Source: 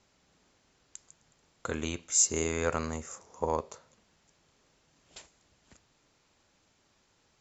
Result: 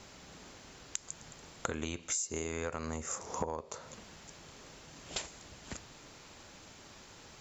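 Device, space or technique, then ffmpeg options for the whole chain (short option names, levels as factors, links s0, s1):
serial compression, leveller first: -af "acompressor=threshold=0.0178:ratio=2,acompressor=threshold=0.00355:ratio=8,volume=5.96"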